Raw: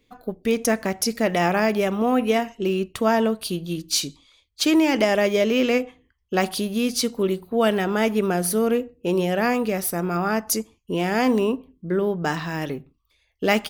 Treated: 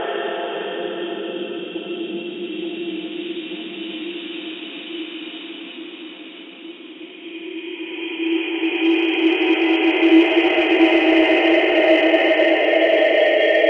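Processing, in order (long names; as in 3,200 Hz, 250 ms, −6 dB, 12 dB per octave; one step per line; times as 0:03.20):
three sine waves on the formant tracks
transient designer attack +1 dB, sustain +6 dB
spectral tilt +3 dB per octave
extreme stretch with random phases 7.4×, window 1.00 s, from 0:03.36
in parallel at −11.5 dB: hard clipping −17 dBFS, distortion −11 dB
on the sum: low-pass that shuts in the quiet parts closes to 2,000 Hz, open at −9.5 dBFS
delay with a low-pass on its return 875 ms, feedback 80%, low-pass 880 Hz, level −14.5 dB
level +1.5 dB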